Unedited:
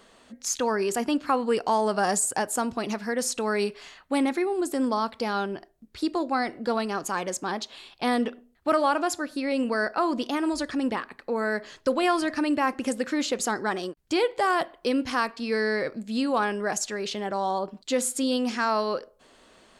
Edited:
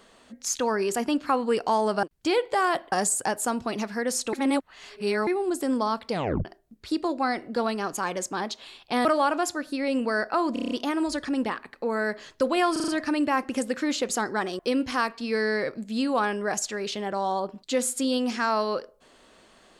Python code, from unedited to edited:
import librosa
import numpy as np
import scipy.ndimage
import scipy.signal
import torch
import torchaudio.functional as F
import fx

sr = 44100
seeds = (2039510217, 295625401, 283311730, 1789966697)

y = fx.edit(x, sr, fx.reverse_span(start_s=3.44, length_s=0.94),
    fx.tape_stop(start_s=5.22, length_s=0.34),
    fx.cut(start_s=8.16, length_s=0.53),
    fx.stutter(start_s=10.17, slice_s=0.03, count=7),
    fx.stutter(start_s=12.18, slice_s=0.04, count=5),
    fx.move(start_s=13.89, length_s=0.89, to_s=2.03), tone=tone)